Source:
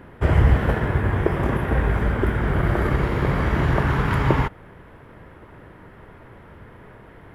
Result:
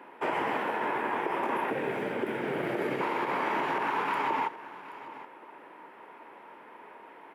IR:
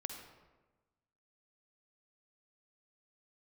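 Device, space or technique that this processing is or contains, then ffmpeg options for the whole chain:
laptop speaker: -filter_complex "[0:a]asettb=1/sr,asplit=3[s0][s1][s2];[s0]atrim=end=1.704[s3];[s1]atrim=start=1.7:end=3.01,asetpts=PTS-STARTPTS,afade=t=in:d=0.004:c=qsin,afade=t=out:st=1.306:d=0.004:c=qsin,equalizer=f=125:t=o:w=1:g=11,equalizer=f=500:t=o:w=1:g=5,equalizer=f=1000:t=o:w=1:g=-12[s4];[s2]atrim=start=3.006[s5];[s3][s4]acrossfade=d=0.004:c1=hsin:c2=qsin[s6];[s6][s5]acrossfade=d=0.004:c1=qsin:c2=hsin,highpass=f=270:w=0.5412,highpass=f=270:w=1.3066,equalizer=f=910:t=o:w=0.44:g=11.5,equalizer=f=2500:t=o:w=0.44:g=8,alimiter=limit=0.188:level=0:latency=1:release=63,aecho=1:1:776:0.158,volume=0.501"

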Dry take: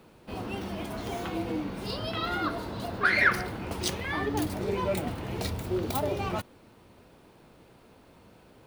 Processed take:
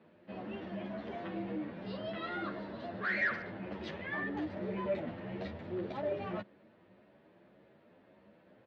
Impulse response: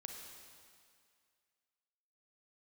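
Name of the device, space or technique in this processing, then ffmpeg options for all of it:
barber-pole flanger into a guitar amplifier: -filter_complex "[0:a]asettb=1/sr,asplit=3[s0][s1][s2];[s0]atrim=end=2.224[s3];[s1]atrim=start=2.22:end=3.35,asetpts=PTS-STARTPTS,afade=t=in:d=0.004:c=qsin,afade=t=out:st=1.126:d=0.004:c=qsin,highshelf=f=4900:g=6[s4];[s2]atrim=start=3.346[s5];[s3][s4]acrossfade=d=0.004:c1=hsin:c2=qsin[s6];[s6][s5]acrossfade=d=0.004:c1=qsin:c2=hsin,asplit=2[s7][s8];[s8]adelay=10.1,afreqshift=1.8[s9];[s7][s9]amix=inputs=2:normalize=1,asoftclip=type=tanh:threshold=0.0562,highpass=100,equalizer=f=200:t=q:w=4:g=9,equalizer=f=340:t=q:w=4:g=5,equalizer=f=590:t=q:w=4:g=10,equalizer=f=1800:t=q:w=4:g=9,lowpass=f=3700:w=0.5412,lowpass=f=3700:w=1.3066,volume=0.398"

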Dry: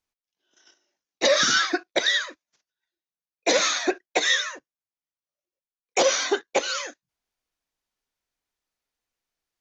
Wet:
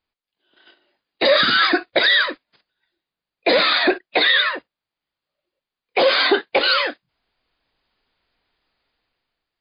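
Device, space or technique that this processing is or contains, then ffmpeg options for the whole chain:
low-bitrate web radio: -filter_complex "[0:a]asettb=1/sr,asplit=3[s0][s1][s2];[s0]atrim=end=2.284[s3];[s1]atrim=start=2.28:end=3.71,asetpts=PTS-STARTPTS,afade=t=in:d=0.004:c=qsin,afade=t=out:st=1.426:d=0.004:c=qsin,lowshelf=f=460:g=3[s4];[s2]atrim=start=3.706[s5];[s3][s4]acrossfade=d=0.004:c1=hsin:c2=qsin[s6];[s6][s5]acrossfade=d=0.004:c1=qsin:c2=hsin,dynaudnorm=f=210:g=7:m=3.55,alimiter=limit=0.251:level=0:latency=1:release=29,volume=2" -ar 11025 -c:a libmp3lame -b:a 32k

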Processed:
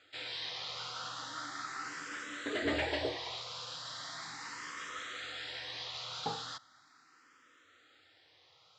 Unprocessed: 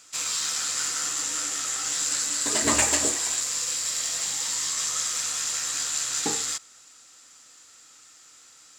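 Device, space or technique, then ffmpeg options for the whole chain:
barber-pole phaser into a guitar amplifier: -filter_complex "[0:a]asplit=2[s0][s1];[s1]afreqshift=0.38[s2];[s0][s2]amix=inputs=2:normalize=1,asoftclip=type=tanh:threshold=0.0668,highpass=92,equalizer=f=93:t=q:w=4:g=6,equalizer=f=210:t=q:w=4:g=-7,equalizer=f=2600:t=q:w=4:g=-7,lowpass=f=3700:w=0.5412,lowpass=f=3700:w=1.3066"

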